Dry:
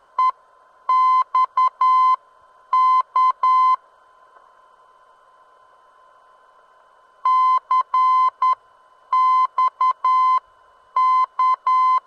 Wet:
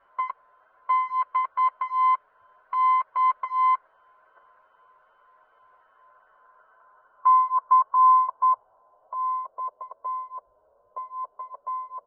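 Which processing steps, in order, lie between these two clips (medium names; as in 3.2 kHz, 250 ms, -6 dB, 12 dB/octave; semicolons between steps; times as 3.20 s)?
low-pass sweep 2.1 kHz -> 590 Hz, 5.73–9.63 s; endless flanger 8.5 ms +2.5 Hz; trim -6 dB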